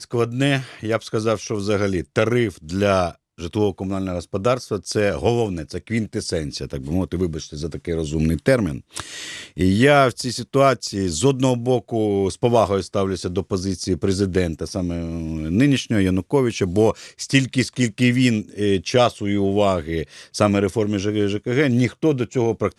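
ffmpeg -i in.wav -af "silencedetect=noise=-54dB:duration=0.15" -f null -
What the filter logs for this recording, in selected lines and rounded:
silence_start: 3.16
silence_end: 3.38 | silence_duration: 0.22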